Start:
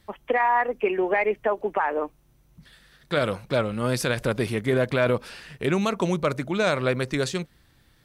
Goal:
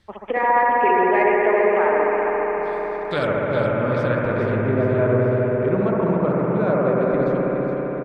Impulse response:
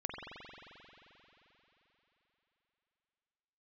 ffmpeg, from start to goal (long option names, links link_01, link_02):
-filter_complex "[0:a]asetnsamples=nb_out_samples=441:pad=0,asendcmd='3.27 lowpass f 1800;4.55 lowpass f 1100',lowpass=6900,aecho=1:1:418|836|1254|1672|2090:0.355|0.17|0.0817|0.0392|0.0188[link_01];[1:a]atrim=start_sample=2205,asetrate=29988,aresample=44100[link_02];[link_01][link_02]afir=irnorm=-1:irlink=0"